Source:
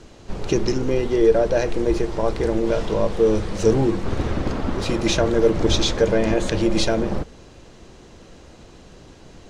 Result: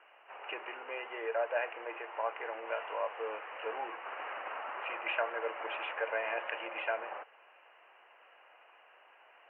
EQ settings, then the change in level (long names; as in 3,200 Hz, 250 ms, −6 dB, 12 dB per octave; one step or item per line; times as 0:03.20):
high-pass filter 750 Hz 24 dB per octave
Chebyshev low-pass filter 2,900 Hz, order 8
−4.5 dB